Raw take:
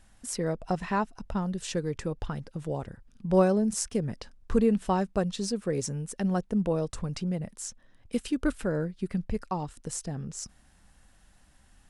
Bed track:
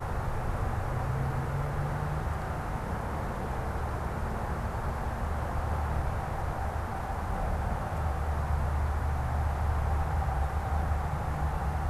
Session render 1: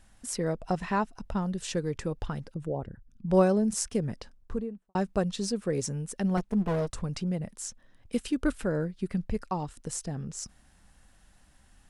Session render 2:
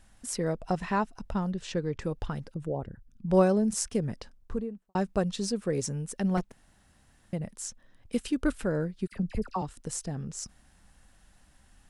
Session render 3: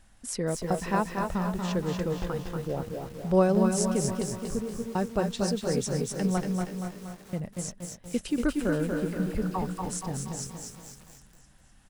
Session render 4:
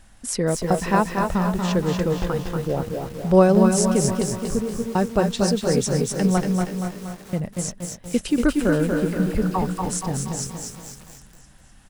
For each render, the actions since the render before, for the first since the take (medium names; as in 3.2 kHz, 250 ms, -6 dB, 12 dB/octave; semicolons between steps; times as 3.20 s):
2.54–3.28 s: resonances exaggerated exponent 1.5; 4.06–4.95 s: studio fade out; 6.37–6.90 s: comb filter that takes the minimum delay 4.7 ms
1.51–2.02 s: distance through air 97 m; 6.52–7.33 s: room tone; 9.07–9.62 s: phase dispersion lows, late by 53 ms, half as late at 1.4 kHz
feedback delay 253 ms, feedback 54%, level -9 dB; bit-crushed delay 236 ms, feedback 55%, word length 8-bit, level -4.5 dB
trim +7.5 dB; peak limiter -3 dBFS, peak gain reduction 1.5 dB